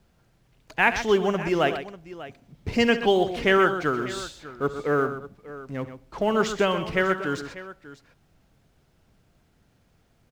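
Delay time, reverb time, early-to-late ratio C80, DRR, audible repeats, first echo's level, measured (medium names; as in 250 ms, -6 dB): 68 ms, no reverb, no reverb, no reverb, 3, -16.0 dB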